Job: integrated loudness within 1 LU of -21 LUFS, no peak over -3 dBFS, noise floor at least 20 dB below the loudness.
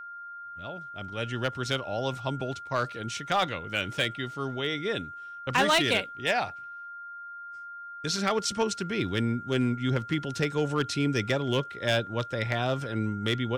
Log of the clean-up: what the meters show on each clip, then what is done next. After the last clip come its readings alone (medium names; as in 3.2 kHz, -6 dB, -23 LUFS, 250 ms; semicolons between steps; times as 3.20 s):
clipped samples 0.3%; clipping level -17.5 dBFS; steady tone 1.4 kHz; tone level -39 dBFS; loudness -29.0 LUFS; peak level -17.5 dBFS; loudness target -21.0 LUFS
-> clip repair -17.5 dBFS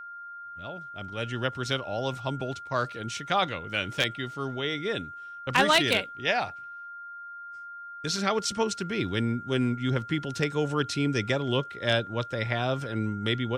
clipped samples 0.0%; steady tone 1.4 kHz; tone level -39 dBFS
-> band-stop 1.4 kHz, Q 30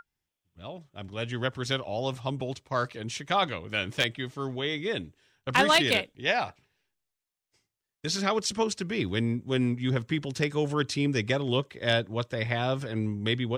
steady tone not found; loudness -28.5 LUFS; peak level -8.0 dBFS; loudness target -21.0 LUFS
-> trim +7.5 dB; peak limiter -3 dBFS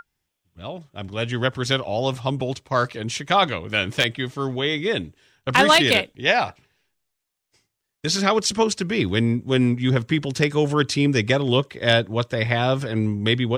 loudness -21.5 LUFS; peak level -3.0 dBFS; noise floor -80 dBFS